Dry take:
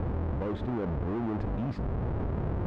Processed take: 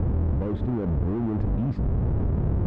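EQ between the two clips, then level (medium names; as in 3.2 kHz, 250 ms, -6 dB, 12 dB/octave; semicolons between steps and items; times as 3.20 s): bass shelf 420 Hz +12 dB; -3.5 dB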